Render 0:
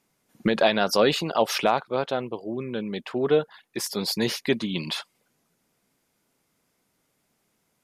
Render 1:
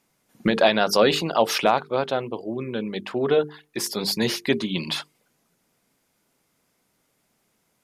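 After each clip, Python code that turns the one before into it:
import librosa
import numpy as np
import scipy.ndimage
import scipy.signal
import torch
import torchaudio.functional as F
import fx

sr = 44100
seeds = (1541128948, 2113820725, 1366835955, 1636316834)

y = fx.hum_notches(x, sr, base_hz=50, count=9)
y = y * 10.0 ** (2.5 / 20.0)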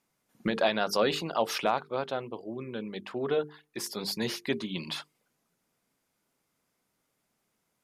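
y = fx.peak_eq(x, sr, hz=1200.0, db=2.0, octaves=0.77)
y = y * 10.0 ** (-8.5 / 20.0)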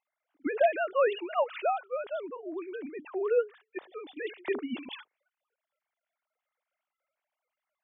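y = fx.sine_speech(x, sr)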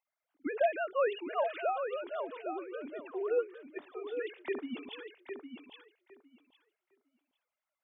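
y = fx.echo_feedback(x, sr, ms=808, feedback_pct=17, wet_db=-7.5)
y = y * 10.0 ** (-4.5 / 20.0)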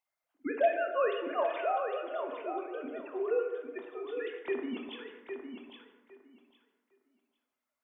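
y = fx.rev_plate(x, sr, seeds[0], rt60_s=1.3, hf_ratio=0.45, predelay_ms=0, drr_db=4.0)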